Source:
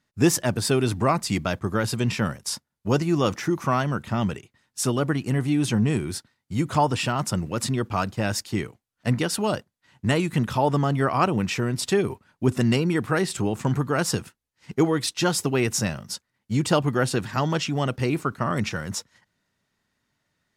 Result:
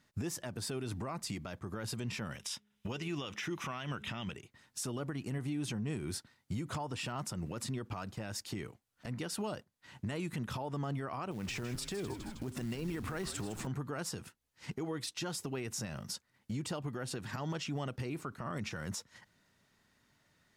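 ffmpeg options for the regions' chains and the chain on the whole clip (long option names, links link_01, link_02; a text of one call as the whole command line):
ffmpeg -i in.wav -filter_complex "[0:a]asettb=1/sr,asplit=3[link_01][link_02][link_03];[link_01]atrim=end=2.314[link_04];[link_02]atrim=start=2.31:end=4.32,asetpts=PTS-STARTPTS,afade=type=in:duration=0.004:curve=qsin,afade=type=out:start_time=2.006:duration=0.004:curve=qsin,equalizer=frequency=3000:width=0.92:gain=14.5,bandreject=frequency=4400:width=6.2,bandreject=frequency=207.9:width_type=h:width=4,bandreject=frequency=415.8:width_type=h:width=4[link_05];[link_03]atrim=start=4.316[link_06];[link_04][link_05]acrossfade=duration=0.004:curve1=hsin:curve2=qsin[link_07];[link_07][link_06]acrossfade=duration=0.004:curve1=qsin:curve2=hsin,asettb=1/sr,asplit=3[link_08][link_09][link_10];[link_08]atrim=end=11.314[link_11];[link_09]atrim=start=11.31:end=13.67,asetpts=PTS-STARTPTS,afade=type=in:duration=0.004:curve=qsin,afade=type=out:start_time=2.356:duration=0.004:curve=qsin,acompressor=threshold=-28dB:ratio=5:attack=3.2:release=140:knee=1:detection=peak,acrusher=bits=5:mode=log:mix=0:aa=0.000001,asplit=5[link_12][link_13][link_14][link_15][link_16];[link_13]adelay=158,afreqshift=-91,volume=-12dB[link_17];[link_14]adelay=316,afreqshift=-182,volume=-19.1dB[link_18];[link_15]adelay=474,afreqshift=-273,volume=-26.3dB[link_19];[link_16]adelay=632,afreqshift=-364,volume=-33.4dB[link_20];[link_12][link_17][link_18][link_19][link_20]amix=inputs=5:normalize=0,atrim=end_sample=104076[link_21];[link_10]atrim=start=13.666[link_22];[link_11][link_21]acrossfade=duration=0.004:curve1=hsin:curve2=qsin[link_23];[link_23][link_22]acrossfade=duration=0.004:curve1=qsin:curve2=hsin,acompressor=threshold=-38dB:ratio=4,alimiter=level_in=9dB:limit=-24dB:level=0:latency=1:release=89,volume=-9dB,volume=3.5dB" out.wav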